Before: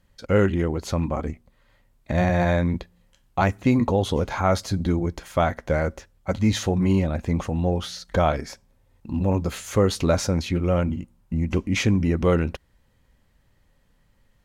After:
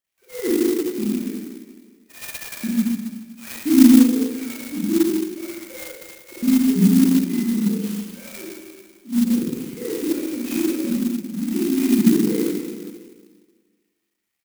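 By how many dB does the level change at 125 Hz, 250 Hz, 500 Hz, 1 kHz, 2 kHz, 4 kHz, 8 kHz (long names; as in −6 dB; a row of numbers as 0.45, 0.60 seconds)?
−7.5 dB, +7.5 dB, −4.0 dB, below −10 dB, −5.0 dB, −0.5 dB, +5.0 dB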